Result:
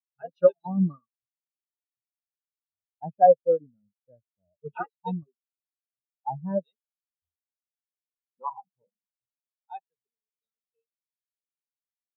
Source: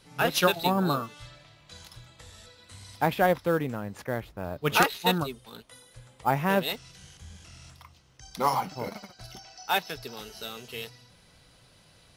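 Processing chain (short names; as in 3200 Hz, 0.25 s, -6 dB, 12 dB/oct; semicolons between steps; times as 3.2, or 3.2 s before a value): spectral expander 4:1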